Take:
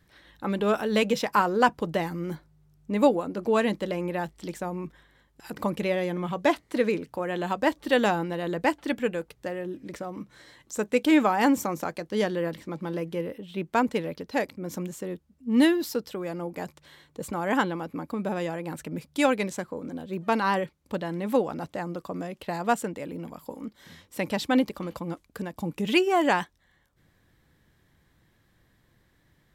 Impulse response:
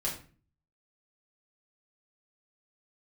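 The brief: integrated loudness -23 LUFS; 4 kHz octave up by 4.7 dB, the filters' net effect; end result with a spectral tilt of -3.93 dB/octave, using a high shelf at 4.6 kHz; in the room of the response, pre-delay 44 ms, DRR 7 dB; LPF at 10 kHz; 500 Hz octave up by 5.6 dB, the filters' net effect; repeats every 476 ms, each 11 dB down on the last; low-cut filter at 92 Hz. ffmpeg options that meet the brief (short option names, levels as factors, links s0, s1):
-filter_complex "[0:a]highpass=92,lowpass=10000,equalizer=f=500:t=o:g=6.5,equalizer=f=4000:t=o:g=4,highshelf=f=4600:g=5,aecho=1:1:476|952|1428:0.282|0.0789|0.0221,asplit=2[s0][s1];[1:a]atrim=start_sample=2205,adelay=44[s2];[s1][s2]afir=irnorm=-1:irlink=0,volume=0.266[s3];[s0][s3]amix=inputs=2:normalize=0"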